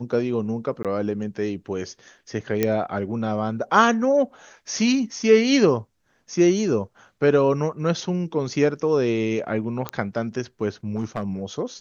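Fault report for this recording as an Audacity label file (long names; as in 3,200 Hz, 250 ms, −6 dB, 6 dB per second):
0.830000	0.850000	drop-out 17 ms
2.630000	2.630000	click −7 dBFS
9.890000	9.890000	click −12 dBFS
10.950000	11.230000	clipping −19.5 dBFS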